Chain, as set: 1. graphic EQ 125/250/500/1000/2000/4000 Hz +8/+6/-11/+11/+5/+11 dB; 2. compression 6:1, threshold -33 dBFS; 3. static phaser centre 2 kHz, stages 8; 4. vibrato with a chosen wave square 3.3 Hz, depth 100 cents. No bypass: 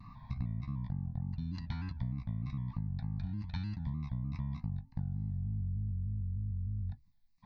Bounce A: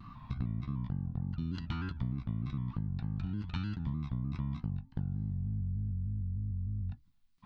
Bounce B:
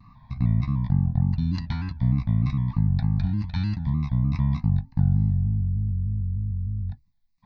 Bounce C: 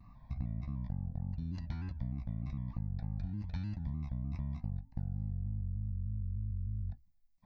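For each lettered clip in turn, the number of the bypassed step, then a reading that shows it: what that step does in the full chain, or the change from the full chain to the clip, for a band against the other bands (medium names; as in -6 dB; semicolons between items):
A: 3, 125 Hz band -3.0 dB; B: 2, mean gain reduction 12.0 dB; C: 1, 2 kHz band -2.5 dB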